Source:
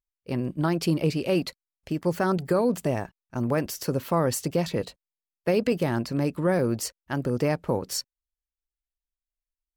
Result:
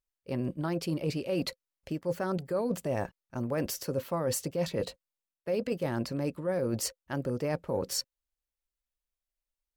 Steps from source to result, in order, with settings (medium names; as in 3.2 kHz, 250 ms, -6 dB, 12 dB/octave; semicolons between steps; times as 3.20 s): peaking EQ 520 Hz +11 dB 0.22 oct; band-stop 500 Hz, Q 12; reverse; compression, threshold -28 dBFS, peak gain reduction 13.5 dB; reverse